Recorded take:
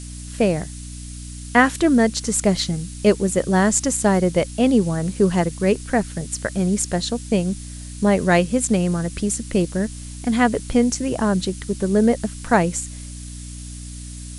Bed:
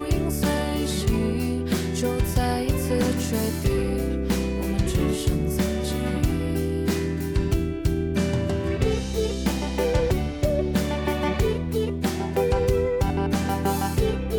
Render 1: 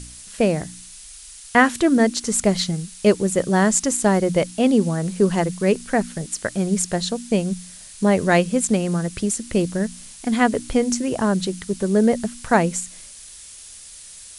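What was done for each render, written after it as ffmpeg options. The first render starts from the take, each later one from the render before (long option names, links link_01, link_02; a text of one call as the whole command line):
ffmpeg -i in.wav -af "bandreject=frequency=60:width_type=h:width=4,bandreject=frequency=120:width_type=h:width=4,bandreject=frequency=180:width_type=h:width=4,bandreject=frequency=240:width_type=h:width=4,bandreject=frequency=300:width_type=h:width=4" out.wav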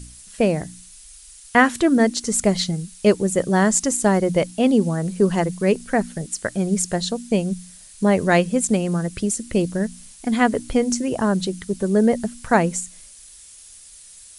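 ffmpeg -i in.wav -af "afftdn=noise_reduction=6:noise_floor=-41" out.wav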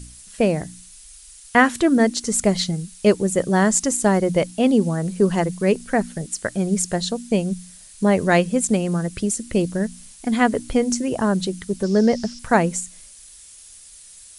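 ffmpeg -i in.wav -filter_complex "[0:a]asettb=1/sr,asplit=3[link_01][link_02][link_03];[link_01]atrim=end=11.834[link_04];[link_02]atrim=start=11.83:end=12.39,asetpts=PTS-STARTPTS,afade=type=in:duration=0.004:curve=qsin,afade=type=out:start_time=0.556:duration=0.004:curve=qsin,lowpass=frequency=5300:width_type=q:width=6.9[link_05];[link_03]atrim=start=12.386[link_06];[link_04][link_05]acrossfade=duration=0.004:curve1=hsin:curve2=qsin[link_07];[link_07][link_06]acrossfade=duration=0.004:curve1=qsin:curve2=hsin" out.wav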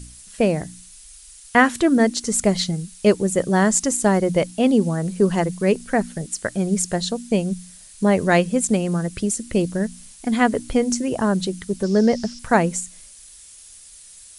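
ffmpeg -i in.wav -af anull out.wav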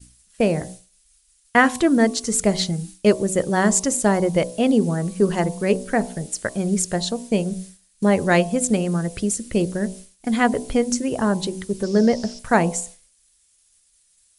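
ffmpeg -i in.wav -af "bandreject=frequency=62.84:width_type=h:width=4,bandreject=frequency=125.68:width_type=h:width=4,bandreject=frequency=188.52:width_type=h:width=4,bandreject=frequency=251.36:width_type=h:width=4,bandreject=frequency=314.2:width_type=h:width=4,bandreject=frequency=377.04:width_type=h:width=4,bandreject=frequency=439.88:width_type=h:width=4,bandreject=frequency=502.72:width_type=h:width=4,bandreject=frequency=565.56:width_type=h:width=4,bandreject=frequency=628.4:width_type=h:width=4,bandreject=frequency=691.24:width_type=h:width=4,bandreject=frequency=754.08:width_type=h:width=4,bandreject=frequency=816.92:width_type=h:width=4,bandreject=frequency=879.76:width_type=h:width=4,bandreject=frequency=942.6:width_type=h:width=4,bandreject=frequency=1005.44:width_type=h:width=4,bandreject=frequency=1068.28:width_type=h:width=4,bandreject=frequency=1131.12:width_type=h:width=4,agate=range=-33dB:threshold=-33dB:ratio=3:detection=peak" out.wav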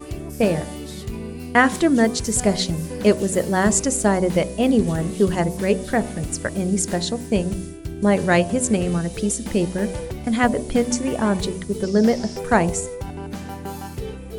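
ffmpeg -i in.wav -i bed.wav -filter_complex "[1:a]volume=-8dB[link_01];[0:a][link_01]amix=inputs=2:normalize=0" out.wav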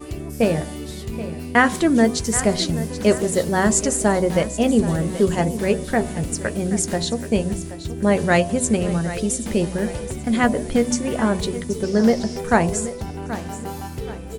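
ffmpeg -i in.wav -filter_complex "[0:a]asplit=2[link_01][link_02];[link_02]adelay=13,volume=-12dB[link_03];[link_01][link_03]amix=inputs=2:normalize=0,aecho=1:1:778|1556|2334:0.2|0.0718|0.0259" out.wav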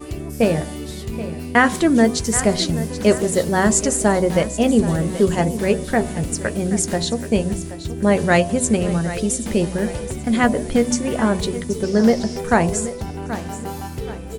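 ffmpeg -i in.wav -af "volume=1.5dB,alimiter=limit=-3dB:level=0:latency=1" out.wav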